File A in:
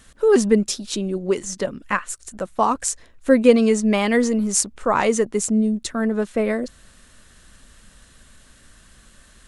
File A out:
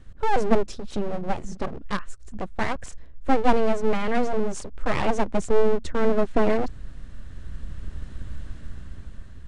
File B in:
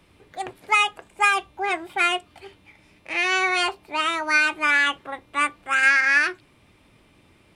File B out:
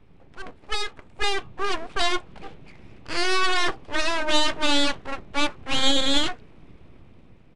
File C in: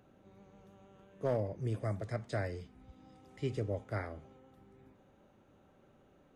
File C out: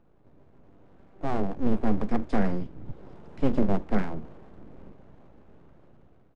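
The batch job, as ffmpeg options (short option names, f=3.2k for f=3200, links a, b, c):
-af "aemphasis=mode=reproduction:type=riaa,aeval=exprs='abs(val(0))':c=same,dynaudnorm=f=560:g=5:m=11.5dB,aresample=22050,aresample=44100,volume=-4.5dB"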